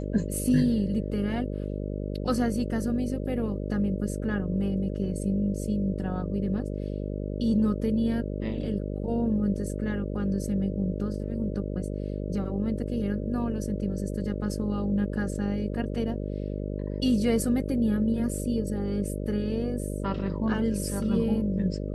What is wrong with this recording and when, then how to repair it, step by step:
mains buzz 50 Hz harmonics 12 −32 dBFS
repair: hum removal 50 Hz, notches 12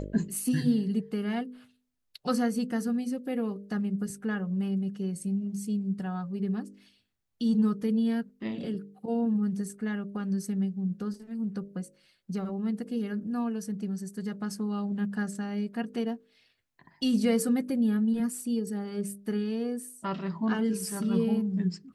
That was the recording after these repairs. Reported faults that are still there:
none of them is left

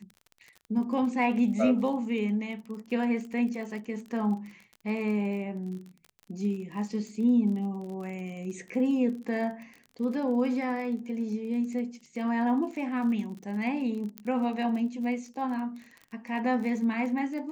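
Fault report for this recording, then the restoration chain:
surface crackle 34 per second −38 dBFS
0:14.18: click −20 dBFS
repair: click removal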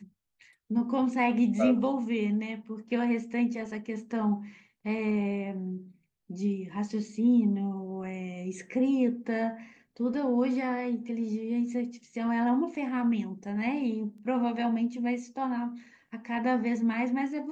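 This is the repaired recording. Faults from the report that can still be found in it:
0:14.18: click

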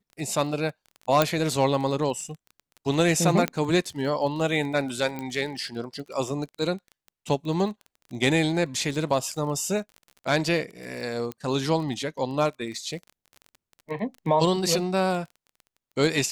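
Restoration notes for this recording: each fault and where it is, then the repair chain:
surface crackle 24 per second −34 dBFS
0:01.22: click −5 dBFS
0:03.48: click −11 dBFS
0:05.19: click −19 dBFS
0:11.32: click −19 dBFS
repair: click removal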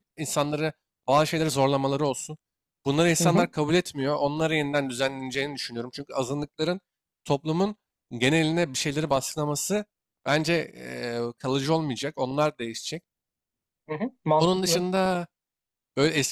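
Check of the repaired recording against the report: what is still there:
0:11.32: click

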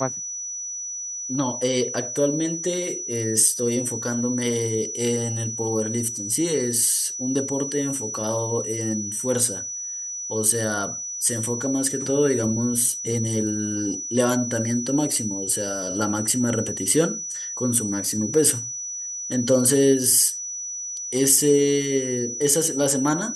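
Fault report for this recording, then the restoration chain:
whistle 5,900 Hz −29 dBFS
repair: notch filter 5,900 Hz, Q 30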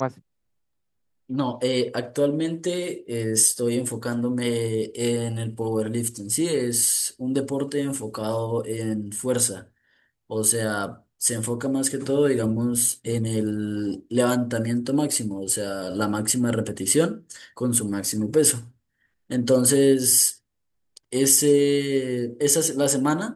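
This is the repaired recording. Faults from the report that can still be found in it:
none of them is left

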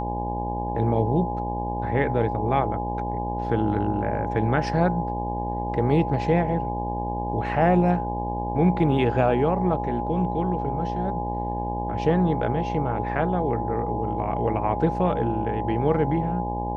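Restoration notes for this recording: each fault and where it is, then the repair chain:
mains buzz 60 Hz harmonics 17 −30 dBFS
whistle 830 Hz −29 dBFS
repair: hum removal 60 Hz, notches 17
notch filter 830 Hz, Q 30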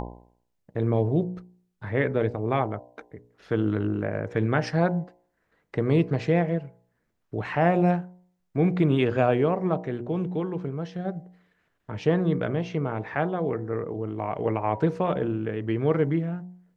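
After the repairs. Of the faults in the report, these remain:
none of them is left

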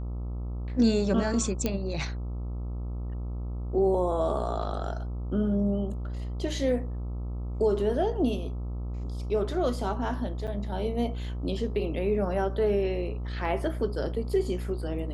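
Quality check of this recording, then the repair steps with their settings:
mains buzz 60 Hz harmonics 22 −33 dBFS
0:01.66: click −13 dBFS
0:10.47–0:10.48: drop-out 7.1 ms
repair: click removal
hum removal 60 Hz, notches 22
repair the gap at 0:10.47, 7.1 ms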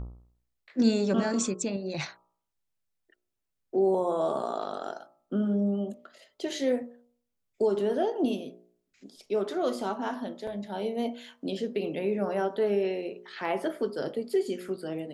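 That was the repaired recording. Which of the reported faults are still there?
none of them is left

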